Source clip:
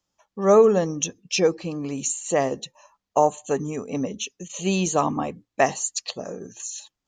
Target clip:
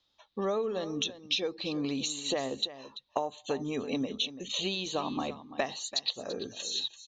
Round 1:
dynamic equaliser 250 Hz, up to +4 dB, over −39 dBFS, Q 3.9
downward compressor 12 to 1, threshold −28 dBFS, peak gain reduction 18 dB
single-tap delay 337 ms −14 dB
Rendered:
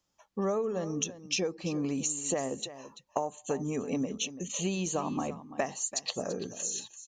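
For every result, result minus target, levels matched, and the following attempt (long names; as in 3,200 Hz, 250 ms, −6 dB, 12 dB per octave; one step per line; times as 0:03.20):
4,000 Hz band −7.5 dB; 125 Hz band +5.5 dB
dynamic equaliser 250 Hz, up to +4 dB, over −39 dBFS, Q 3.9
low-pass with resonance 3,800 Hz, resonance Q 9.4
downward compressor 12 to 1, threshold −28 dBFS, peak gain reduction 18 dB
single-tap delay 337 ms −14 dB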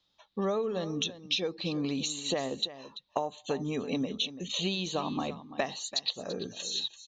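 125 Hz band +4.5 dB
dynamic equaliser 250 Hz, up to +4 dB, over −39 dBFS, Q 3.9
low-pass with resonance 3,800 Hz, resonance Q 9.4
downward compressor 12 to 1, threshold −28 dBFS, peak gain reduction 18 dB
parametric band 170 Hz −10.5 dB 0.31 octaves
single-tap delay 337 ms −14 dB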